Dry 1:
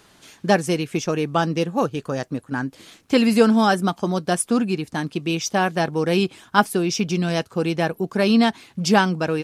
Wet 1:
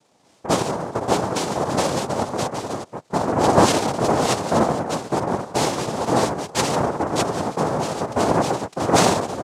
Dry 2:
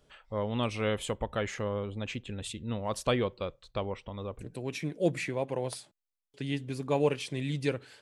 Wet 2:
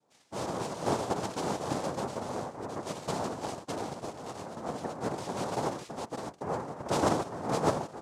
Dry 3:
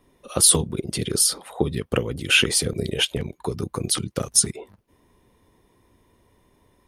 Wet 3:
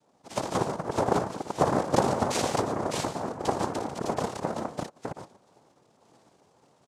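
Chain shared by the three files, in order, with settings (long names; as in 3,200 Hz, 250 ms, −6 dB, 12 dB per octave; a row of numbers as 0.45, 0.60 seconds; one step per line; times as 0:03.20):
Bessel low-pass filter 1,300 Hz, order 8
sample-and-hold tremolo
on a send: multi-tap delay 58/80/113/145/607 ms −7.5/−9.5/−15.5/−9.5/−3 dB
on the sum: cochlear-implant simulation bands 2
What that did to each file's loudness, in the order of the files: 0.0, −1.0, −8.0 LU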